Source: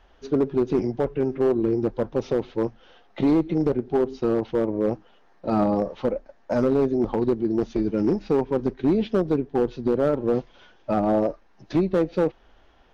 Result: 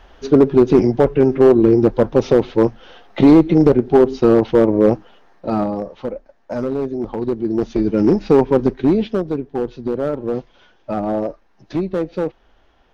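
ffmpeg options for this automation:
-af "volume=21.5dB,afade=t=out:st=4.86:d=0.87:silence=0.266073,afade=t=in:st=7.12:d=1.34:silence=0.281838,afade=t=out:st=8.46:d=0.79:silence=0.334965"

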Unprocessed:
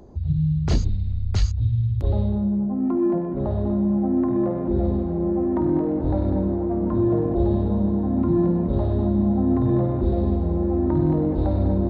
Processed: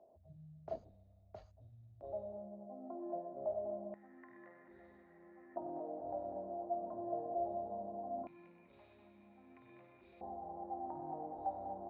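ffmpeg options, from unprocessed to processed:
-af "asetnsamples=n=441:p=0,asendcmd='3.94 bandpass f 1900;5.56 bandpass f 680;8.27 bandpass f 2400;10.21 bandpass f 770',bandpass=f=650:t=q:w=14:csg=0"

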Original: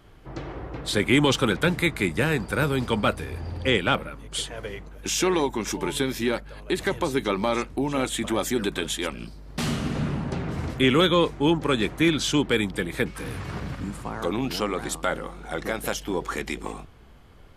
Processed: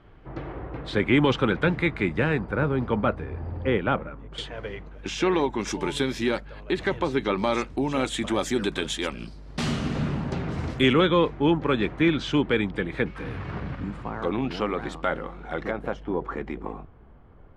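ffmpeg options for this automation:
-af "asetnsamples=n=441:p=0,asendcmd='2.39 lowpass f 1500;4.38 lowpass f 3200;5.59 lowpass f 6300;6.45 lowpass f 3600;7.38 lowpass f 6800;10.93 lowpass f 2700;15.71 lowpass f 1300',lowpass=2.5k"

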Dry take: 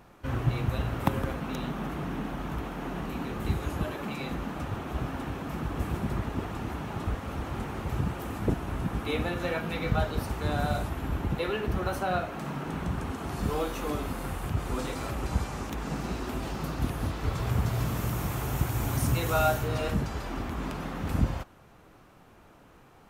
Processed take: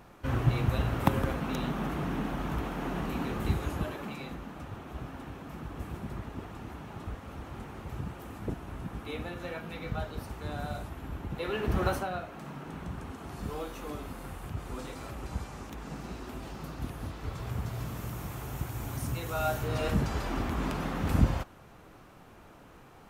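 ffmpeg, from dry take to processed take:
-af "volume=21dB,afade=t=out:st=3.29:d=1.12:silence=0.354813,afade=t=in:st=11.31:d=0.56:silence=0.298538,afade=t=out:st=11.87:d=0.23:silence=0.316228,afade=t=in:st=19.36:d=0.77:silence=0.334965"

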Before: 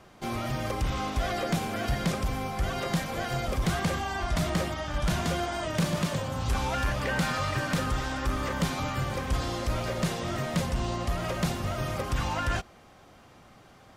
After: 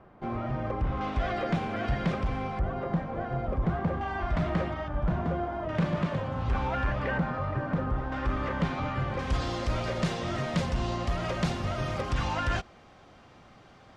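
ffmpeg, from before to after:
-af "asetnsamples=n=441:p=0,asendcmd='1.01 lowpass f 2600;2.59 lowpass f 1100;4.01 lowpass f 2000;4.88 lowpass f 1100;5.69 lowpass f 2100;7.18 lowpass f 1100;8.12 lowpass f 2400;9.19 lowpass f 5400',lowpass=1.4k"

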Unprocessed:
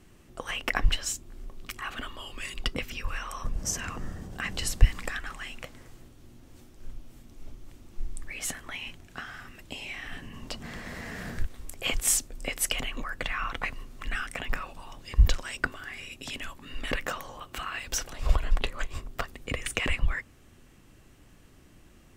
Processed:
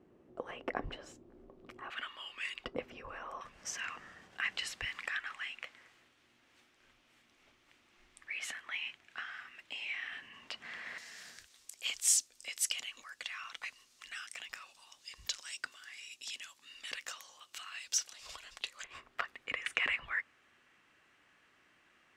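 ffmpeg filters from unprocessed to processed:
-af "asetnsamples=n=441:p=0,asendcmd='1.9 bandpass f 2100;2.65 bandpass f 580;3.41 bandpass f 2200;10.98 bandpass f 5600;18.84 bandpass f 1800',bandpass=f=440:t=q:w=1.2:csg=0"

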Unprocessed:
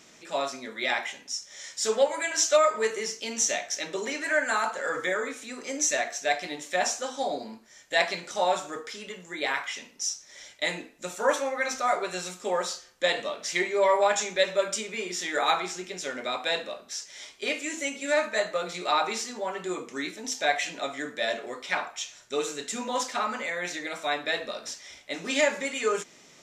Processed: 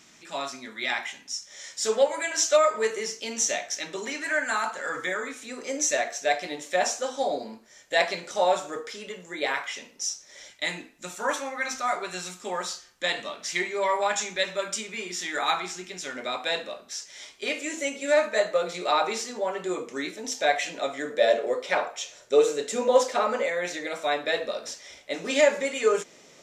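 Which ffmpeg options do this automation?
-af "asetnsamples=n=441:p=0,asendcmd='1.47 equalizer g 1.5;3.73 equalizer g -4.5;5.45 equalizer g 4.5;10.5 equalizer g -6.5;16.16 equalizer g 0;17.57 equalizer g 6;21.1 equalizer g 14.5;23.48 equalizer g 7',equalizer=f=510:t=o:w=0.79:g=-8"

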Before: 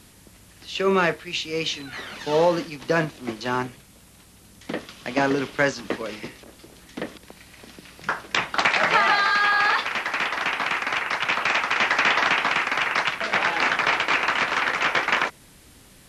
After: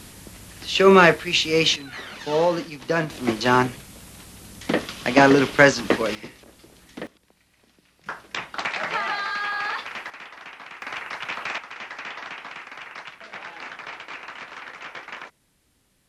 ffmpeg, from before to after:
-af "asetnsamples=n=441:p=0,asendcmd='1.76 volume volume -1dB;3.1 volume volume 7.5dB;6.15 volume volume -3.5dB;7.07 volume volume -15.5dB;8.06 volume volume -7.5dB;10.1 volume volume -16dB;10.82 volume volume -7.5dB;11.58 volume volume -15.5dB',volume=7.5dB"

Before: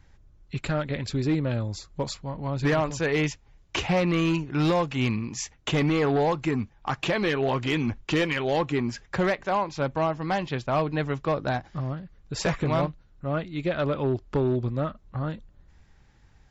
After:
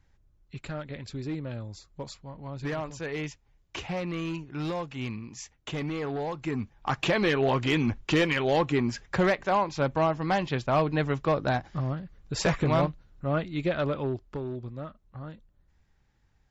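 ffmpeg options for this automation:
-af "volume=0.5dB,afade=t=in:st=6.32:d=0.63:silence=0.334965,afade=t=out:st=13.55:d=0.85:silence=0.281838"

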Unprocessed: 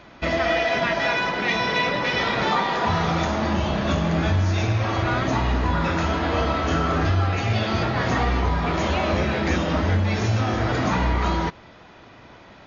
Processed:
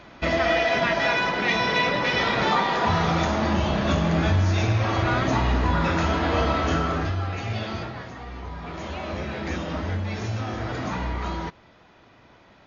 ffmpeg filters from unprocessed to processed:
-af "volume=11dB,afade=t=out:st=6.62:d=0.52:silence=0.473151,afade=t=out:st=7.65:d=0.48:silence=0.266073,afade=t=in:st=8.13:d=1.41:silence=0.281838"

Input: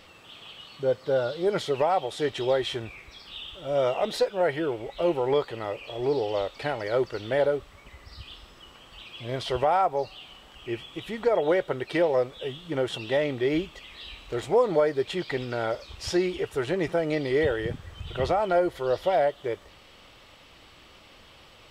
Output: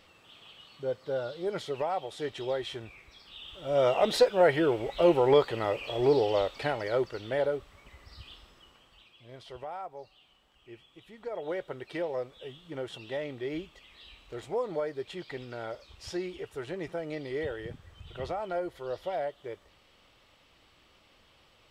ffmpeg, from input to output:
-af "volume=9.5dB,afade=t=in:st=3.38:d=0.73:silence=0.316228,afade=t=out:st=6.01:d=1.16:silence=0.421697,afade=t=out:st=8.27:d=0.9:silence=0.251189,afade=t=in:st=11.17:d=0.45:silence=0.446684"

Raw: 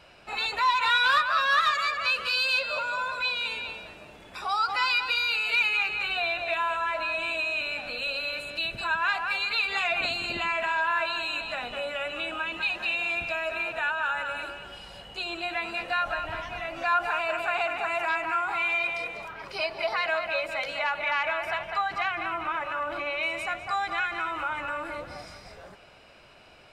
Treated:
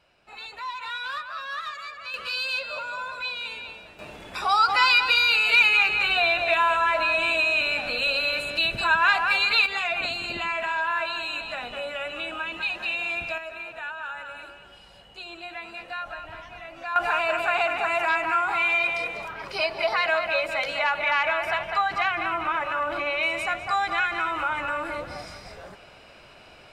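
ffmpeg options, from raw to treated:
-af "asetnsamples=n=441:p=0,asendcmd='2.14 volume volume -3dB;3.99 volume volume 6.5dB;9.66 volume volume 0dB;13.38 volume volume -6.5dB;16.96 volume volume 4dB',volume=-10.5dB"

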